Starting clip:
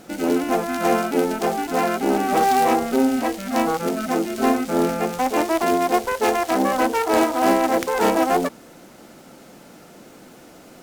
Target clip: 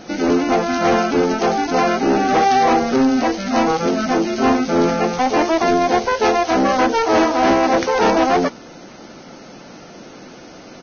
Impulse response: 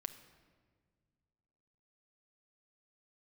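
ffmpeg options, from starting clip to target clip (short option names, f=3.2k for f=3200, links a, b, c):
-af "aresample=16000,asoftclip=type=tanh:threshold=-16dB,aresample=44100,volume=6.5dB" -ar 16000 -c:a libvorbis -b:a 16k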